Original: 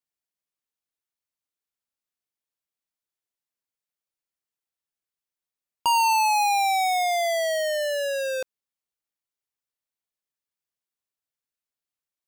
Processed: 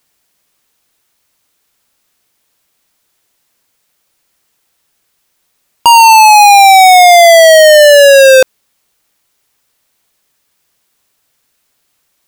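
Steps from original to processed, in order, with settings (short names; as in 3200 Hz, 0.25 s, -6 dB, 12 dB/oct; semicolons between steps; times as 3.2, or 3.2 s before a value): maximiser +30.5 dB; gain -1 dB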